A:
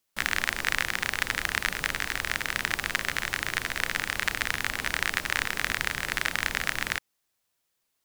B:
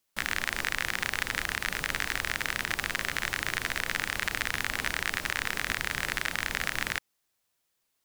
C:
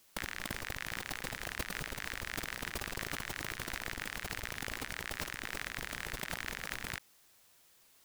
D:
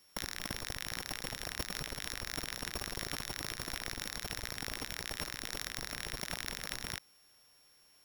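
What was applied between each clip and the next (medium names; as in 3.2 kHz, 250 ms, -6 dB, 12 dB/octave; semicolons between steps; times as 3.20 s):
peak limiter -9.5 dBFS, peak gain reduction 5.5 dB
compressor with a negative ratio -44 dBFS, ratio -1; trim +2 dB
sorted samples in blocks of 8 samples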